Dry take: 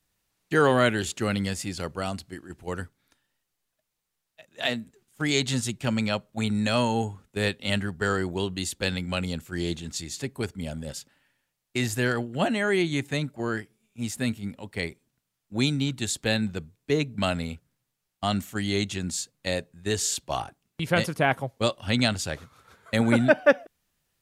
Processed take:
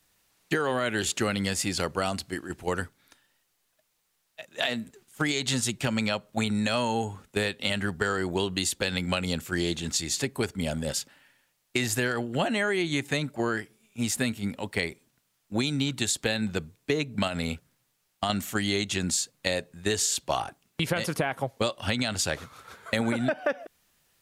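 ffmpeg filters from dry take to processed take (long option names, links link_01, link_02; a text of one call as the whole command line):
ffmpeg -i in.wav -filter_complex "[0:a]asettb=1/sr,asplit=3[link_01][link_02][link_03];[link_01]atrim=end=17.274[link_04];[link_02]atrim=start=17.27:end=18.3,asetpts=PTS-STARTPTS,afade=type=in:duration=0.004:curve=qsin,afade=type=out:start_time=1.026:duration=0.004:curve=qsin,acompressor=threshold=-27dB:ratio=6:attack=3.2:release=140:knee=1:detection=peak[link_05];[link_03]atrim=start=18.296[link_06];[link_04][link_05]acrossfade=duration=0.004:curve1=hsin:curve2=qsin[link_07];[link_07][link_06]acrossfade=duration=0.004:curve1=qsin:curve2=hsin,lowshelf=frequency=250:gain=-7,alimiter=limit=-16dB:level=0:latency=1:release=134,acompressor=threshold=-32dB:ratio=6,volume=8.5dB" out.wav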